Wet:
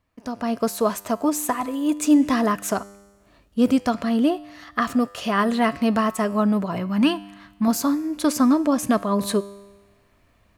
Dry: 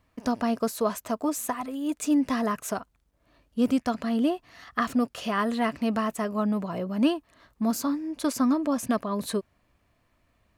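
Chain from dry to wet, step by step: 6.76–7.68 s: graphic EQ 125/500/1000/2000 Hz +4/-11/+4/+4 dB; level rider gain up to 13 dB; feedback comb 100 Hz, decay 1.2 s, harmonics all, mix 50%

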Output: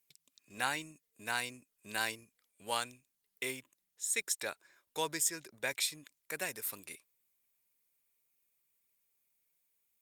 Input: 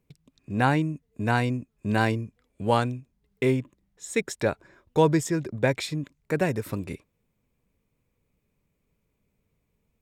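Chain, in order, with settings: differentiator; trim +5.5 dB; Opus 48 kbps 48 kHz

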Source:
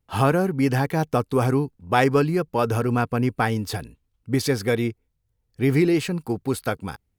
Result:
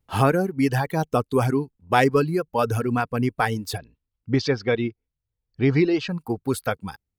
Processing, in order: reverb removal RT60 1.7 s; 3.78–6.09 s: steep low-pass 5.5 kHz 36 dB/octave; trim +1 dB

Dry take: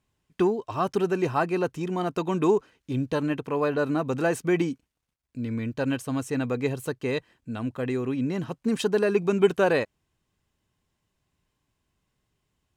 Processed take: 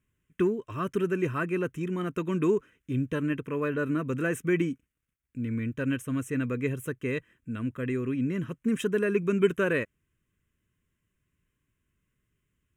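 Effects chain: static phaser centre 1.9 kHz, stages 4

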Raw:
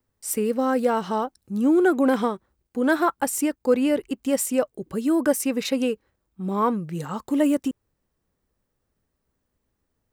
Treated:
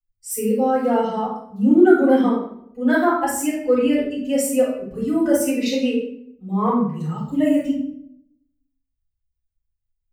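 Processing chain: expander on every frequency bin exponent 1.5; simulated room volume 130 m³, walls mixed, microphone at 5.1 m; trim -10 dB

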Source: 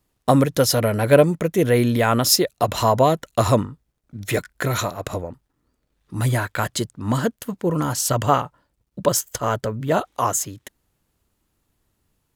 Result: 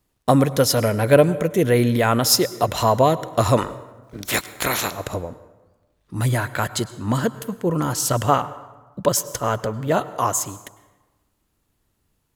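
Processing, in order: 3.56–4.90 s: spectral peaks clipped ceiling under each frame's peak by 24 dB; plate-style reverb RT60 1.2 s, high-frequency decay 0.6×, pre-delay 90 ms, DRR 16 dB

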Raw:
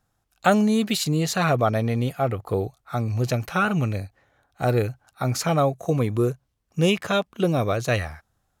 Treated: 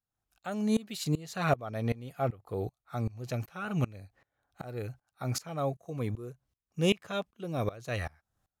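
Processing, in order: sawtooth tremolo in dB swelling 2.6 Hz, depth 23 dB; trim -3 dB

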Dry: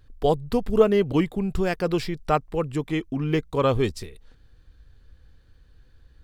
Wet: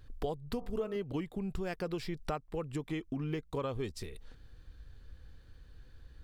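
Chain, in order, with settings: 0.40–0.96 s: de-hum 51.69 Hz, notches 26; compression 6:1, threshold -34 dBFS, peak gain reduction 20.5 dB

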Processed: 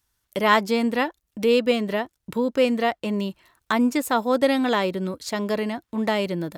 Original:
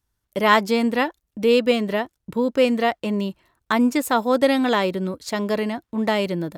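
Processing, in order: tape noise reduction on one side only encoder only; trim -2 dB

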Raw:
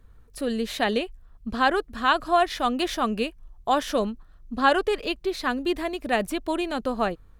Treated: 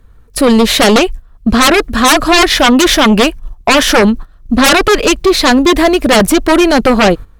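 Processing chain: sine folder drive 15 dB, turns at -7.5 dBFS; gate -24 dBFS, range -13 dB; trim +4 dB

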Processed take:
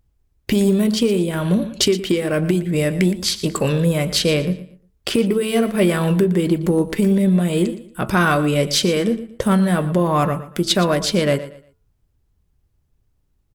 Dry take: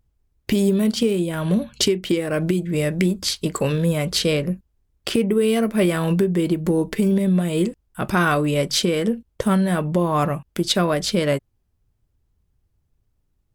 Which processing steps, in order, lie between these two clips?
de-hum 109.8 Hz, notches 13; in parallel at -8 dB: saturation -13 dBFS, distortion -19 dB; on the sum: feedback delay 117 ms, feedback 28%, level -15 dB

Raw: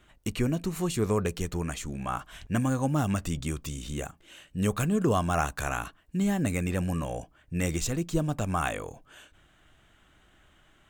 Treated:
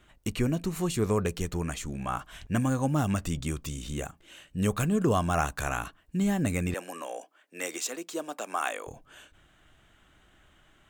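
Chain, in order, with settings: 6.74–8.87 s: Bessel high-pass 470 Hz, order 6

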